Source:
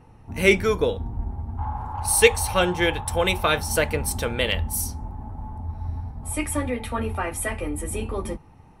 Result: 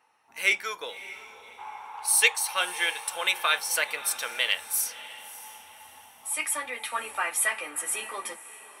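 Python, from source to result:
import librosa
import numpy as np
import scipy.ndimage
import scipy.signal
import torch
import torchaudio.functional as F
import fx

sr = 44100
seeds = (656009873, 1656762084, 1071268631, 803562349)

y = scipy.signal.sosfilt(scipy.signal.butter(2, 1200.0, 'highpass', fs=sr, output='sos'), x)
y = fx.rider(y, sr, range_db=5, speed_s=2.0)
y = fx.echo_diffused(y, sr, ms=601, feedback_pct=40, wet_db=-15.5)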